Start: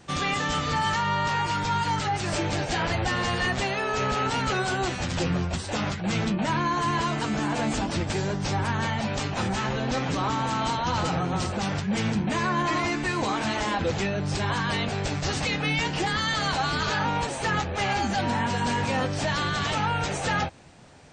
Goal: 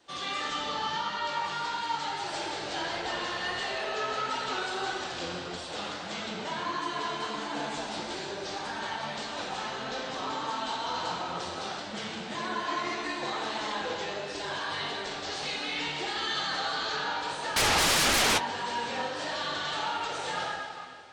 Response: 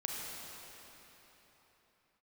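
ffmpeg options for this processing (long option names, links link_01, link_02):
-filter_complex "[0:a]asettb=1/sr,asplit=3[link_01][link_02][link_03];[link_01]atrim=end=0.544[link_04];[link_02]atrim=start=0.54:end=1.1,asetpts=PTS-STARTPTS,afade=type=in:duration=0.004:curve=qsin,afade=type=out:start_time=0.556:duration=0.004:curve=qsin,equalizer=frequency=200:width_type=o:width=0.33:gain=7,equalizer=frequency=2000:width_type=o:width=0.33:gain=-6,equalizer=frequency=8000:width_type=o:width=0.33:gain=-12[link_05];[link_03]atrim=start=1.096[link_06];[link_04][link_05]acrossfade=duration=0.004:curve1=hsin:curve2=qsin[link_07];[link_07][link_06]acrossfade=duration=0.004:curve1=qsin:curve2=hsin,aexciter=amount=5.8:drive=4.1:freq=3400,acrossover=split=300 3400:gain=0.158 1 0.0891[link_08][link_09][link_10];[link_08][link_09][link_10]amix=inputs=3:normalize=0[link_11];[1:a]atrim=start_sample=2205,asetrate=83790,aresample=44100[link_12];[link_11][link_12]afir=irnorm=-1:irlink=0,acontrast=55,asettb=1/sr,asplit=3[link_13][link_14][link_15];[link_13]atrim=end=17.564[link_16];[link_14]atrim=start=17.56:end=18.38,asetpts=PTS-STARTPTS,afade=type=in:duration=0.004:curve=qsin,afade=type=out:start_time=0.816:duration=0.004:curve=qsin,aeval=exprs='0.237*sin(PI/2*5.62*val(0)/0.237)':channel_layout=same[link_17];[link_15]atrim=start=18.376[link_18];[link_16][link_17]acrossfade=duration=0.004:curve1=hsin:curve2=qsin[link_19];[link_19][link_18]acrossfade=duration=0.004:curve1=qsin:curve2=hsin,flanger=delay=3.1:depth=9.3:regen=-41:speed=1.6:shape=sinusoidal,volume=-4.5dB"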